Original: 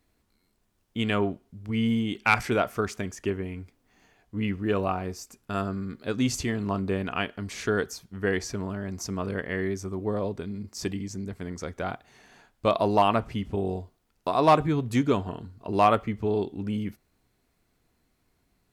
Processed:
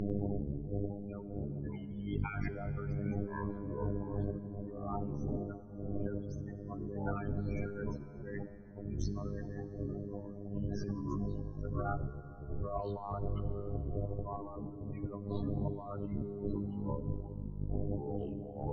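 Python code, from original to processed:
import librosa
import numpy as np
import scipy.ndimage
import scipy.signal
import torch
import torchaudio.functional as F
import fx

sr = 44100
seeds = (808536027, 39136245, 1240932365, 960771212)

y = fx.block_float(x, sr, bits=5)
y = fx.dmg_wind(y, sr, seeds[0], corner_hz=370.0, level_db=-26.0)
y = fx.robotise(y, sr, hz=101.0)
y = fx.spec_topn(y, sr, count=16)
y = fx.lowpass(y, sr, hz=1800.0, slope=6)
y = fx.echo_pitch(y, sr, ms=98, semitones=-6, count=2, db_per_echo=-6.0)
y = fx.peak_eq(y, sr, hz=240.0, db=-14.5, octaves=1.1, at=(11.73, 14.37))
y = fx.over_compress(y, sr, threshold_db=-35.0, ratio=-1.0)
y = fx.rev_plate(y, sr, seeds[1], rt60_s=4.5, hf_ratio=0.65, predelay_ms=0, drr_db=13.0)
y = F.gain(torch.from_numpy(y), -4.0).numpy()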